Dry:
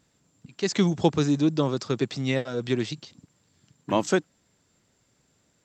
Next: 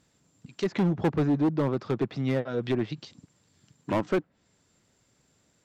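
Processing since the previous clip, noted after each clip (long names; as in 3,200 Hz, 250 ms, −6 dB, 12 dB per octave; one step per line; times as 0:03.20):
treble cut that deepens with the level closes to 1,700 Hz, closed at −23 dBFS
gain into a clipping stage and back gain 19.5 dB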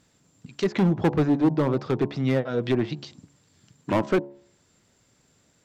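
hum removal 70.51 Hz, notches 15
level +4 dB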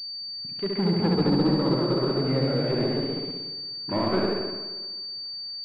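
flutter between parallel walls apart 11.9 metres, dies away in 1.4 s
delay with pitch and tempo change per echo 275 ms, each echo +1 semitone, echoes 3
switching amplifier with a slow clock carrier 4,600 Hz
level −6 dB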